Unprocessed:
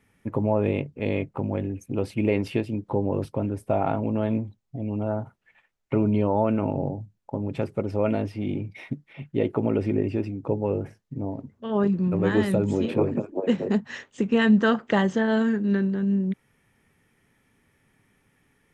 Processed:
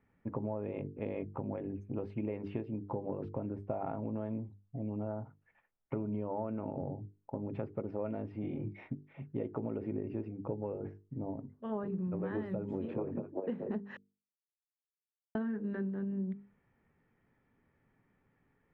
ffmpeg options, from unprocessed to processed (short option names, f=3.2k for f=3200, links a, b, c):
-filter_complex "[0:a]asettb=1/sr,asplit=3[a][b][c];[a]atrim=end=8.414[d];[b]atrim=start=8.41:end=8.87,asetpts=PTS-STARTPTS,afade=t=in:d=0.004:c=qsin,afade=t=out:st=0.456:d=0.004:c=qsin,asplit=2[e][f];[f]adelay=26,volume=-3dB[g];[e][g]amix=inputs=2:normalize=0,atrim=end_sample=20286[h];[c]atrim=start=8.866[i];[d][h]acrossfade=d=0.004:c1=hsin:c2=qsin[j];[j][i]acrossfade=d=0.004:c1=qsin:c2=hsin,asplit=3[k][l][m];[k]atrim=end=13.97,asetpts=PTS-STARTPTS,afade=t=out:st=13.966:d=0.004:c=hsin[n];[l]atrim=start=13.97:end=15.35,asetpts=PTS-STARTPTS,volume=0[o];[m]atrim=start=15.35,asetpts=PTS-STARTPTS,afade=t=in:d=0.004:c=hsin[p];[n][o][p]concat=n=3:v=0:a=1,lowpass=1.5k,bandreject=f=50:t=h:w=6,bandreject=f=100:t=h:w=6,bandreject=f=150:t=h:w=6,bandreject=f=200:t=h:w=6,bandreject=f=250:t=h:w=6,bandreject=f=300:t=h:w=6,bandreject=f=350:t=h:w=6,bandreject=f=400:t=h:w=6,bandreject=f=450:t=h:w=6,acompressor=threshold=-27dB:ratio=6,volume=-6dB"